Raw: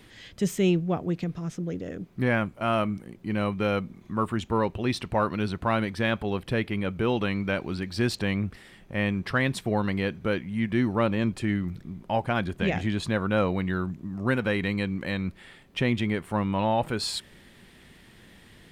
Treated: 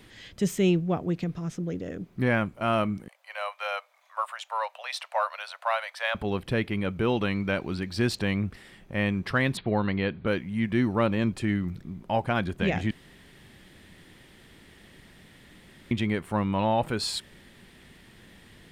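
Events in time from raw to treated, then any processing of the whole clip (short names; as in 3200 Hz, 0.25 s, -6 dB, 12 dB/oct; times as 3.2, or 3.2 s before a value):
3.08–6.15 steep high-pass 570 Hz 72 dB/oct
9.57–10.27 steep low-pass 4500 Hz 96 dB/oct
12.91–15.91 room tone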